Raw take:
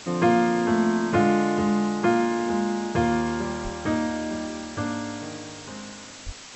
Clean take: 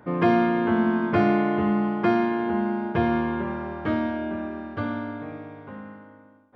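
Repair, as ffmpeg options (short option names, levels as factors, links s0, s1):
-filter_complex "[0:a]asplit=3[s0][s1][s2];[s0]afade=t=out:st=3.63:d=0.02[s3];[s1]highpass=f=140:w=0.5412,highpass=f=140:w=1.3066,afade=t=in:st=3.63:d=0.02,afade=t=out:st=3.75:d=0.02[s4];[s2]afade=t=in:st=3.75:d=0.02[s5];[s3][s4][s5]amix=inputs=3:normalize=0,asplit=3[s6][s7][s8];[s6]afade=t=out:st=6.25:d=0.02[s9];[s7]highpass=f=140:w=0.5412,highpass=f=140:w=1.3066,afade=t=in:st=6.25:d=0.02,afade=t=out:st=6.37:d=0.02[s10];[s8]afade=t=in:st=6.37:d=0.02[s11];[s9][s10][s11]amix=inputs=3:normalize=0,afwtdn=0.011"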